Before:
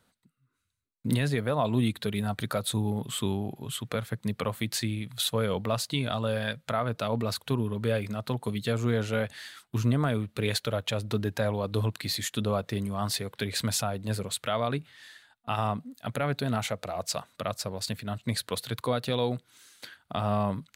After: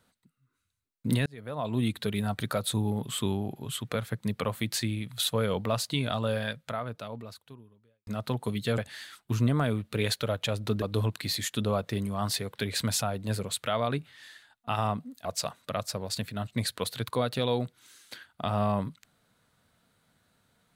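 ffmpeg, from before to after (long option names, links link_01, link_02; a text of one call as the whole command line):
ffmpeg -i in.wav -filter_complex "[0:a]asplit=6[link_01][link_02][link_03][link_04][link_05][link_06];[link_01]atrim=end=1.26,asetpts=PTS-STARTPTS,afade=type=out:start_time=1.256:duration=0.004:curve=hsin[link_07];[link_02]atrim=start=1.26:end=8.07,asetpts=PTS-STARTPTS,afade=type=in:duration=0.71,afade=type=out:start_time=5.06:duration=1.75:curve=qua[link_08];[link_03]atrim=start=8.07:end=8.782,asetpts=PTS-STARTPTS,afade=type=in:duration=0.004:curve=hsin[link_09];[link_04]atrim=start=9.218:end=11.262[link_10];[link_05]atrim=start=11.618:end=16.052[link_11];[link_06]atrim=start=16.958[link_12];[link_07][link_08][link_09]concat=n=3:v=0:a=1[link_13];[link_13][link_10]acrossfade=duration=0.004:curve1=hsin:curve2=hsin[link_14];[link_14][link_11]acrossfade=duration=0.004:curve1=hsin:curve2=hsin[link_15];[link_15][link_12]acrossfade=duration=0.004:curve1=hsin:curve2=hsin" out.wav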